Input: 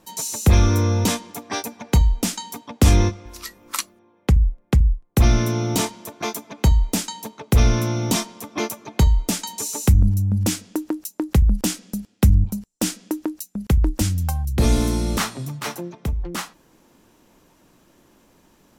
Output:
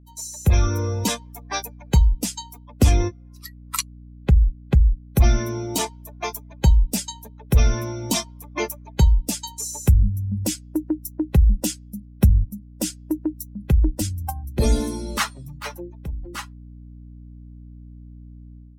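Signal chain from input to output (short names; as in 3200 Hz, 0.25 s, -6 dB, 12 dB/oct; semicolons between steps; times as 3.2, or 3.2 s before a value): per-bin expansion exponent 2; 6.7–7.36 comb 5 ms, depth 45%; hum 60 Hz, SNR 22 dB; AGC gain up to 8 dB; gain -3 dB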